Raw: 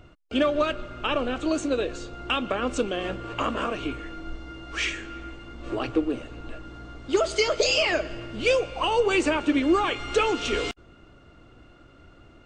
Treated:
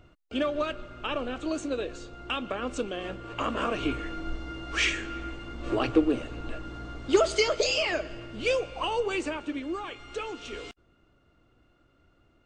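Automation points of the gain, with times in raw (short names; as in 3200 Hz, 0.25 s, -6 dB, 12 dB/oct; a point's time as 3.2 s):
3.24 s -5.5 dB
3.89 s +2 dB
7.08 s +2 dB
7.74 s -4.5 dB
8.81 s -4.5 dB
9.7 s -12.5 dB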